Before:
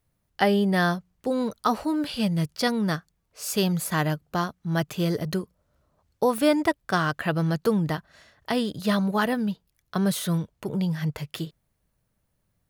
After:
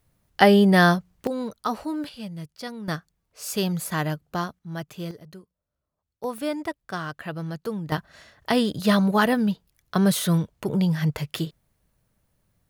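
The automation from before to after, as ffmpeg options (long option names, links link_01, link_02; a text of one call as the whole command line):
ffmpeg -i in.wav -af "asetnsamples=nb_out_samples=441:pad=0,asendcmd='1.27 volume volume -3.5dB;2.09 volume volume -11dB;2.88 volume volume -1.5dB;4.59 volume volume -8dB;5.11 volume volume -16.5dB;6.24 volume volume -7.5dB;7.92 volume volume 4dB',volume=6dB" out.wav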